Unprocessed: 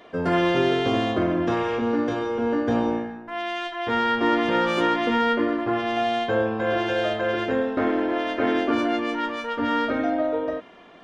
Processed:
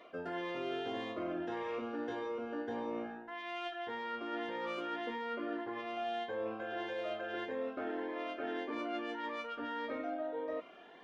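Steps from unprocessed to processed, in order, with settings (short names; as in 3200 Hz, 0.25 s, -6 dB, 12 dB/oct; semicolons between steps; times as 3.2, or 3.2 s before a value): tone controls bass -15 dB, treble -9 dB; reverse; compressor 6:1, threshold -31 dBFS, peak gain reduction 12 dB; reverse; cascading phaser rising 1.7 Hz; gain -3.5 dB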